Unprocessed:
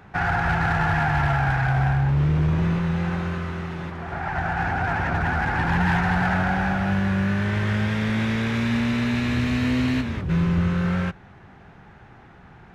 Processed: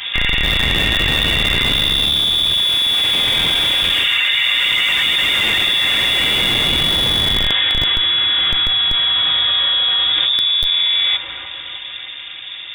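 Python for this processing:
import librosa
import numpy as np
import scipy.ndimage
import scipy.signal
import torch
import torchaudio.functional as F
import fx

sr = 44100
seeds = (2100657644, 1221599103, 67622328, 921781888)

p1 = fx.doppler_pass(x, sr, speed_mps=7, closest_m=1.4, pass_at_s=4.21)
p2 = fx.low_shelf(p1, sr, hz=190.0, db=3.5)
p3 = fx.notch(p2, sr, hz=370.0, q=12.0)
p4 = p3 + 0.98 * np.pad(p3, (int(4.6 * sr / 1000.0), 0))[:len(p3)]
p5 = fx.echo_wet_highpass(p4, sr, ms=306, feedback_pct=55, hz=2800.0, wet_db=-11.0)
p6 = fx.freq_invert(p5, sr, carrier_hz=3600)
p7 = fx.schmitt(p6, sr, flips_db=-36.0)
p8 = p6 + (p7 * librosa.db_to_amplitude(-9.0))
p9 = fx.env_flatten(p8, sr, amount_pct=100)
y = p9 * librosa.db_to_amplitude(4.5)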